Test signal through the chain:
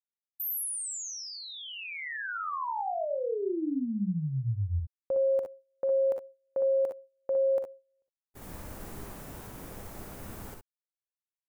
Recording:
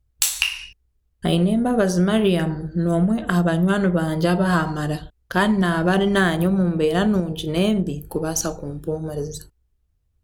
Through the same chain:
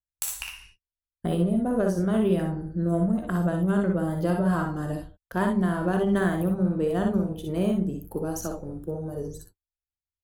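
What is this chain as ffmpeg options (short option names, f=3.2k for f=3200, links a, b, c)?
-af "agate=range=-28dB:threshold=-37dB:ratio=16:detection=peak,equalizer=f=3.8k:w=0.55:g=-12.5,aecho=1:1:44|59|69:0.2|0.531|0.316,volume=-6dB"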